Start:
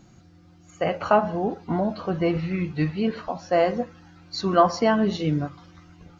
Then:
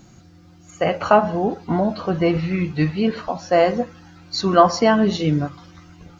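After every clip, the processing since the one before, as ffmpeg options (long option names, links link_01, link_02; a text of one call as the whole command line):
ffmpeg -i in.wav -af "highshelf=frequency=5900:gain=6,volume=4.5dB" out.wav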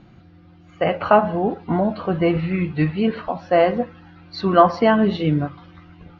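ffmpeg -i in.wav -af "lowpass=frequency=3500:width=0.5412,lowpass=frequency=3500:width=1.3066" out.wav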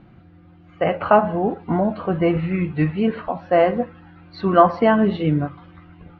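ffmpeg -i in.wav -af "lowpass=2800" out.wav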